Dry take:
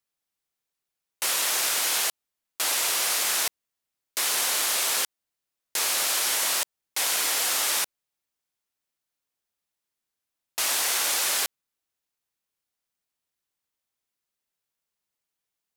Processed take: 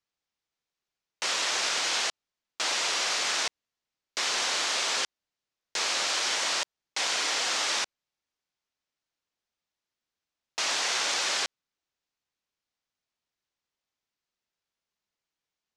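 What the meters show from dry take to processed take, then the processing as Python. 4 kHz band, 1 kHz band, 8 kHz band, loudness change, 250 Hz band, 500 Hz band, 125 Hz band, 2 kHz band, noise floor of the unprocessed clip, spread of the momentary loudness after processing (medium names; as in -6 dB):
0.0 dB, 0.0 dB, -6.0 dB, -3.5 dB, 0.0 dB, 0.0 dB, no reading, 0.0 dB, under -85 dBFS, 7 LU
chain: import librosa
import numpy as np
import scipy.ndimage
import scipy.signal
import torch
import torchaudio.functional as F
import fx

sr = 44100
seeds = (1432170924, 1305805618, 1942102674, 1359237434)

y = scipy.signal.sosfilt(scipy.signal.butter(4, 6500.0, 'lowpass', fs=sr, output='sos'), x)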